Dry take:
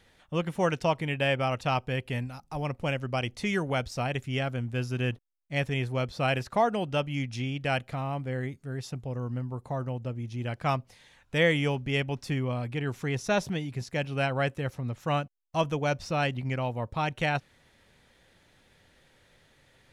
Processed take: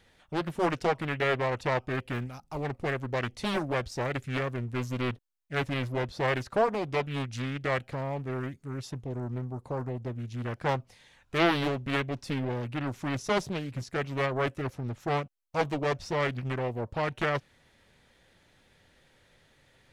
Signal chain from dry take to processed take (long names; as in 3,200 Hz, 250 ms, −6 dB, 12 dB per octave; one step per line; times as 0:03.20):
highs frequency-modulated by the lows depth 0.9 ms
level −1 dB